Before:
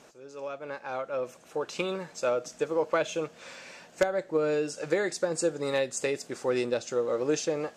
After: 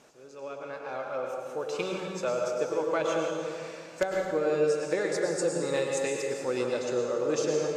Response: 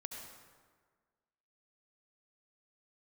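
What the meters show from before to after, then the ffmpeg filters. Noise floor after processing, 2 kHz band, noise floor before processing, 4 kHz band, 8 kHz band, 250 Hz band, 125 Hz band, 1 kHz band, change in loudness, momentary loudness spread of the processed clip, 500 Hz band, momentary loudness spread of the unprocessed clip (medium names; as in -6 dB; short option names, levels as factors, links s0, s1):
-46 dBFS, -0.5 dB, -54 dBFS, -1.0 dB, -0.5 dB, 0.0 dB, +1.0 dB, +0.5 dB, +0.5 dB, 11 LU, +0.5 dB, 11 LU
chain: -filter_complex "[1:a]atrim=start_sample=2205,asetrate=30870,aresample=44100[s0];[0:a][s0]afir=irnorm=-1:irlink=0"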